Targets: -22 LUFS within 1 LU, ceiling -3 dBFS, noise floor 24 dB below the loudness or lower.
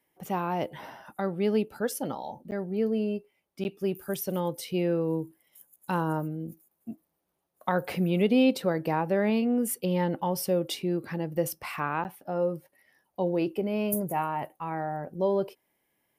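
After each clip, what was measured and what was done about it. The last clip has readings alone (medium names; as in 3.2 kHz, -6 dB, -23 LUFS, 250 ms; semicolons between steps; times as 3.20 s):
dropouts 3; longest dropout 9.6 ms; loudness -29.5 LUFS; peak level -12.5 dBFS; loudness target -22.0 LUFS
-> interpolate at 2.51/3.64/12.04 s, 9.6 ms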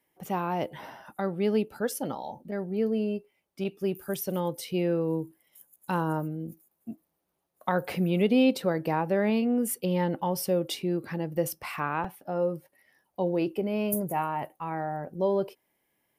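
dropouts 0; loudness -29.5 LUFS; peak level -12.5 dBFS; loudness target -22.0 LUFS
-> trim +7.5 dB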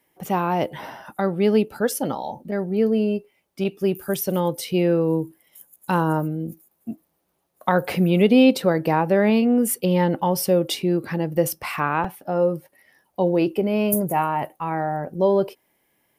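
loudness -22.0 LUFS; peak level -5.0 dBFS; noise floor -70 dBFS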